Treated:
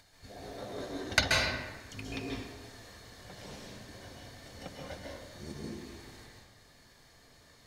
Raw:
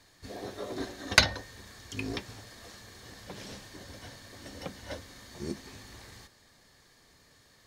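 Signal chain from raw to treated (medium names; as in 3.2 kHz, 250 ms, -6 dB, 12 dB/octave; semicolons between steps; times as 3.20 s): upward compressor, threshold -51 dBFS; reverberation RT60 1.2 s, pre-delay 129 ms, DRR -3 dB; trim -7 dB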